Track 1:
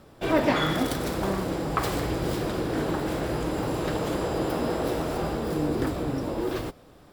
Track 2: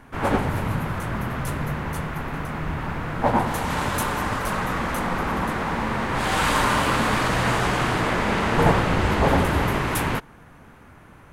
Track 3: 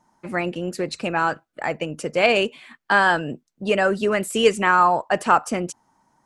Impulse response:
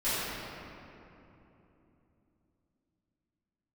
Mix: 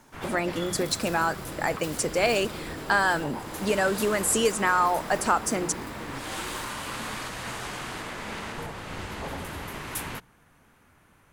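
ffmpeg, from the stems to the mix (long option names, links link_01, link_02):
-filter_complex "[0:a]volume=-10.5dB[link_01];[1:a]volume=-13dB[link_02];[2:a]equalizer=frequency=2800:width_type=o:width=0.77:gain=-8,acompressor=threshold=-27dB:ratio=2,volume=0.5dB[link_03];[link_01][link_02]amix=inputs=2:normalize=0,alimiter=level_in=2dB:limit=-24dB:level=0:latency=1:release=486,volume=-2dB,volume=0dB[link_04];[link_03][link_04]amix=inputs=2:normalize=0,highshelf=frequency=2800:gain=11,bandreject=frequency=60:width_type=h:width=6,bandreject=frequency=120:width_type=h:width=6,bandreject=frequency=180:width_type=h:width=6"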